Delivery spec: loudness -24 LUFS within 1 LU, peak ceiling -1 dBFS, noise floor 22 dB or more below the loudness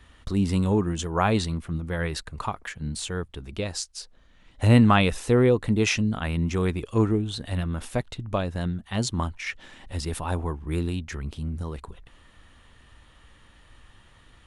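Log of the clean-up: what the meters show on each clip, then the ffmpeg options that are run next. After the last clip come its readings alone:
loudness -26.0 LUFS; peak -4.0 dBFS; loudness target -24.0 LUFS
-> -af "volume=2dB"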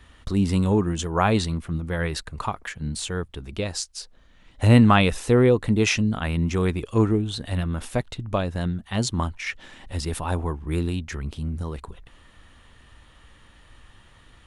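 loudness -24.0 LUFS; peak -2.0 dBFS; noise floor -53 dBFS

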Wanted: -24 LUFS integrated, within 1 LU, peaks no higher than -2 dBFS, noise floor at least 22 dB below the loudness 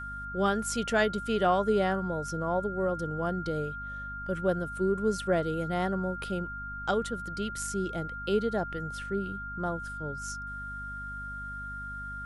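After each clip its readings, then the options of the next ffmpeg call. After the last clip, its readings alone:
hum 50 Hz; harmonics up to 250 Hz; hum level -41 dBFS; steady tone 1400 Hz; tone level -37 dBFS; loudness -31.5 LUFS; peak -13.5 dBFS; loudness target -24.0 LUFS
-> -af "bandreject=f=50:t=h:w=6,bandreject=f=100:t=h:w=6,bandreject=f=150:t=h:w=6,bandreject=f=200:t=h:w=6,bandreject=f=250:t=h:w=6"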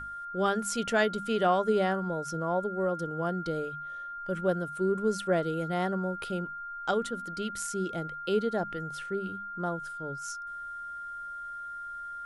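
hum none; steady tone 1400 Hz; tone level -37 dBFS
-> -af "bandreject=f=1.4k:w=30"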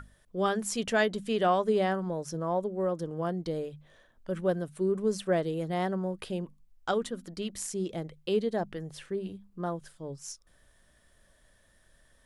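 steady tone none; loudness -31.5 LUFS; peak -14.0 dBFS; loudness target -24.0 LUFS
-> -af "volume=7.5dB"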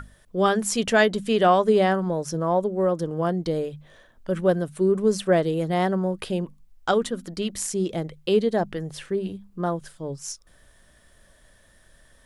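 loudness -24.0 LUFS; peak -6.5 dBFS; noise floor -57 dBFS

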